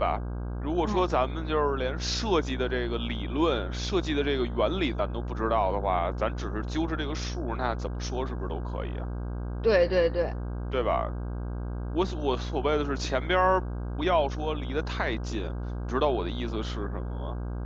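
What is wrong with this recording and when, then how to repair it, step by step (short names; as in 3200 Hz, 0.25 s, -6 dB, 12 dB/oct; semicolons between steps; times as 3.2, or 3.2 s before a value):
buzz 60 Hz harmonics 27 -33 dBFS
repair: de-hum 60 Hz, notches 27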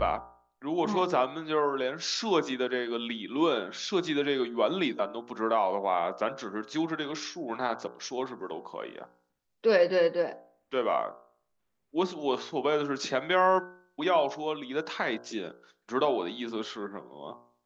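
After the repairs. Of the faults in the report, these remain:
none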